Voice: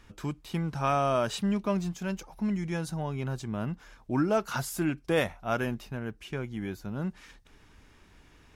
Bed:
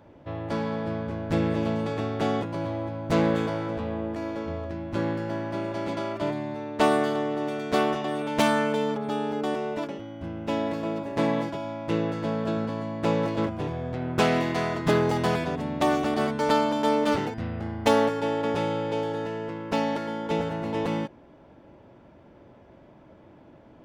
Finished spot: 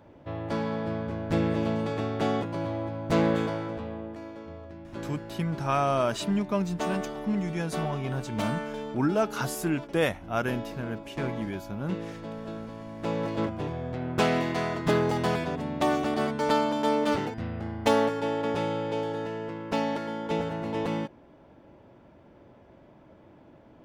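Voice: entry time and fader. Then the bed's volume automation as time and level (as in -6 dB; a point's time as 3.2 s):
4.85 s, +1.0 dB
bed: 3.43 s -1 dB
4.35 s -10 dB
12.76 s -10 dB
13.41 s -2 dB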